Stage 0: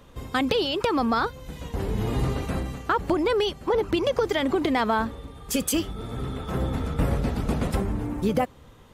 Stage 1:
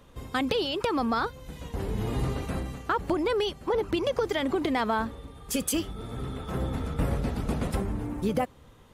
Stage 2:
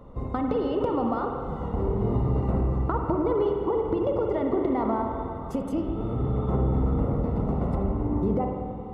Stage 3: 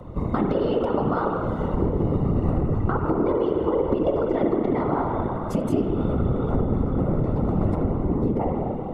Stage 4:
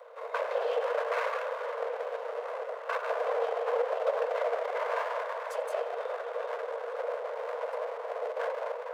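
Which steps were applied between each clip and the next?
parametric band 9,900 Hz +3.5 dB 0.22 octaves; level −3.5 dB
downward compressor, threshold −31 dBFS, peak gain reduction 9.5 dB; Savitzky-Golay smoothing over 65 samples; spring reverb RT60 2.5 s, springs 46/51 ms, chirp 35 ms, DRR 1.5 dB; level +7.5 dB
parametric band 900 Hz −2.5 dB; downward compressor, threshold −26 dBFS, peak gain reduction 6.5 dB; random phases in short frames; level +7.5 dB
lower of the sound and its delayed copy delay 1.9 ms; Chebyshev high-pass with heavy ripple 460 Hz, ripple 3 dB; echo through a band-pass that steps 243 ms, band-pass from 940 Hz, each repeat 0.7 octaves, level −11 dB; level −2 dB

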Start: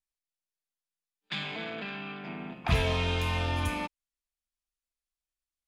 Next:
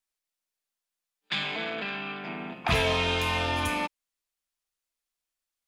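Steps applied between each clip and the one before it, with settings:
low-shelf EQ 170 Hz −11.5 dB
level +5.5 dB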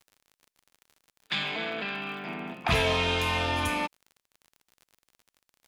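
surface crackle 51 per second −42 dBFS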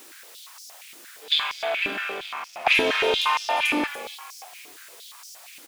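converter with a step at zero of −40.5 dBFS
echo with shifted repeats 287 ms, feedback 37%, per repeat −54 Hz, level −10.5 dB
high-pass on a step sequencer 8.6 Hz 310–5,400 Hz

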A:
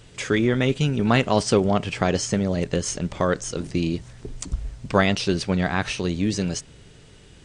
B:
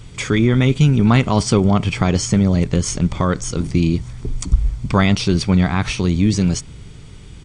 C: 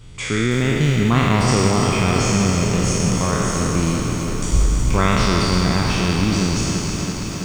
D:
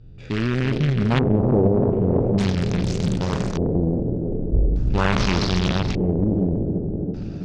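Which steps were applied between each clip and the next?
in parallel at −1.5 dB: brickwall limiter −16.5 dBFS, peak gain reduction 11.5 dB; on the sum: low-shelf EQ 190 Hz +7 dB; comb filter 0.9 ms, depth 37%; level −1 dB
peak hold with a decay on every bin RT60 2.97 s; feedback echo at a low word length 330 ms, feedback 80%, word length 6 bits, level −8 dB; level −6.5 dB
adaptive Wiener filter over 41 samples; auto-filter low-pass square 0.42 Hz 490–4,600 Hz; highs frequency-modulated by the lows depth 0.63 ms; level −2.5 dB

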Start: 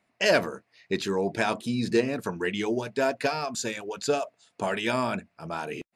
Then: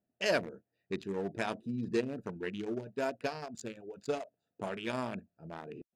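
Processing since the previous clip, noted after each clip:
adaptive Wiener filter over 41 samples
level −7.5 dB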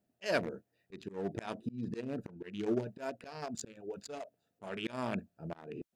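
volume swells 285 ms
level +5 dB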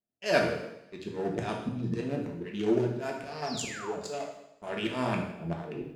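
noise gate with hold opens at −54 dBFS
sound drawn into the spectrogram fall, 0:03.46–0:04.00, 510–5,800 Hz −48 dBFS
coupled-rooms reverb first 0.83 s, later 2.5 s, from −28 dB, DRR −0.5 dB
level +4 dB

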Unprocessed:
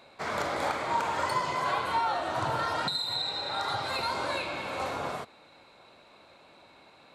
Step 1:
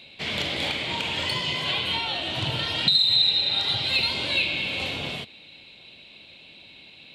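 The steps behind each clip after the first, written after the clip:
drawn EQ curve 190 Hz 0 dB, 1,300 Hz −18 dB, 3,000 Hz +12 dB, 6,100 Hz −6 dB
level +7.5 dB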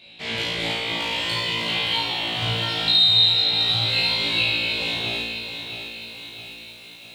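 flutter between parallel walls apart 3 metres, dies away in 0.87 s
feedback echo at a low word length 661 ms, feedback 55%, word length 7 bits, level −9 dB
level −4 dB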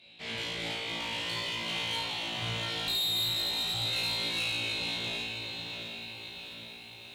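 tube saturation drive 20 dB, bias 0.35
on a send: feedback echo with a low-pass in the loop 778 ms, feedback 61%, low-pass 4,700 Hz, level −9 dB
on the sum: level −7.5 dB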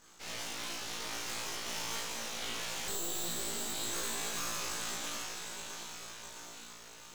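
full-wave rectification
low-shelf EQ 120 Hz −9.5 dB

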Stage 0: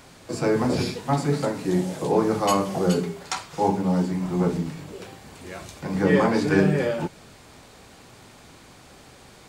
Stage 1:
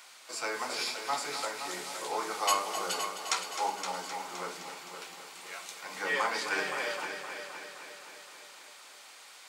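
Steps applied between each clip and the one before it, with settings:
high-pass filter 1,200 Hz 12 dB per octave
notch filter 1,700 Hz, Q 14
echo machine with several playback heads 259 ms, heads first and second, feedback 55%, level −11 dB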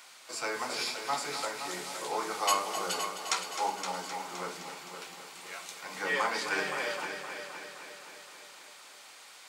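low-shelf EQ 120 Hz +12 dB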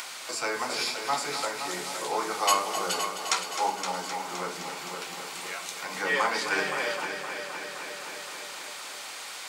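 upward compression, threshold −34 dBFS
level +4 dB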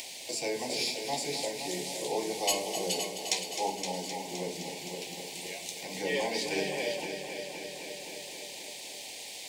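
low-shelf EQ 410 Hz +5 dB
leveller curve on the samples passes 1
Butterworth band-reject 1,300 Hz, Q 0.85
level −5 dB

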